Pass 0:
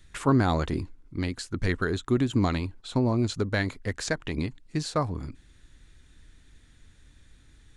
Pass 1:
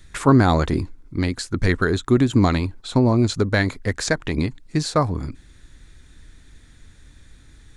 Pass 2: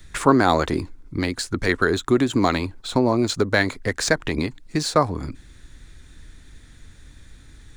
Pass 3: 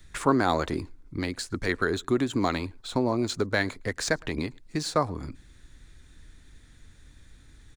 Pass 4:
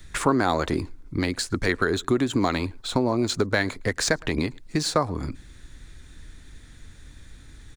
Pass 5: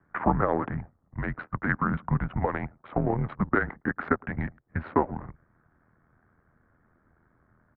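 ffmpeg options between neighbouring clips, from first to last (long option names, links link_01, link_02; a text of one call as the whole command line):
ffmpeg -i in.wav -af "equalizer=frequency=2900:width_type=o:width=0.3:gain=-4.5,volume=7.5dB" out.wav
ffmpeg -i in.wav -filter_complex "[0:a]acrossover=split=270|4500[link_01][link_02][link_03];[link_01]acompressor=threshold=-29dB:ratio=6[link_04];[link_03]acrusher=bits=3:mode=log:mix=0:aa=0.000001[link_05];[link_04][link_02][link_05]amix=inputs=3:normalize=0,volume=2dB" out.wav
ffmpeg -i in.wav -filter_complex "[0:a]asplit=2[link_01][link_02];[link_02]adelay=110.8,volume=-29dB,highshelf=frequency=4000:gain=-2.49[link_03];[link_01][link_03]amix=inputs=2:normalize=0,volume=-6.5dB" out.wav
ffmpeg -i in.wav -af "acompressor=threshold=-27dB:ratio=2,volume=6.5dB" out.wav
ffmpeg -i in.wav -af "adynamicsmooth=sensitivity=6.5:basefreq=920,tremolo=f=81:d=0.667,highpass=frequency=340:width_type=q:width=0.5412,highpass=frequency=340:width_type=q:width=1.307,lowpass=frequency=2100:width_type=q:width=0.5176,lowpass=frequency=2100:width_type=q:width=0.7071,lowpass=frequency=2100:width_type=q:width=1.932,afreqshift=-220,volume=3dB" out.wav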